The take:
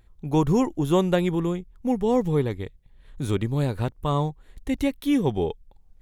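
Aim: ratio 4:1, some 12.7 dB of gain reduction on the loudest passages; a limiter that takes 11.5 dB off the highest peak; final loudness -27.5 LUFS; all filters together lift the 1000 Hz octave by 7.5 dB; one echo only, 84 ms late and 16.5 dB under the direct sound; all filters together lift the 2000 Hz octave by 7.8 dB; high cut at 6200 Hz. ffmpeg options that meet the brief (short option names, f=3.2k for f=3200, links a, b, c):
-af "lowpass=6.2k,equalizer=f=1k:t=o:g=7.5,equalizer=f=2k:t=o:g=7.5,acompressor=threshold=-29dB:ratio=4,alimiter=level_in=4.5dB:limit=-24dB:level=0:latency=1,volume=-4.5dB,aecho=1:1:84:0.15,volume=11dB"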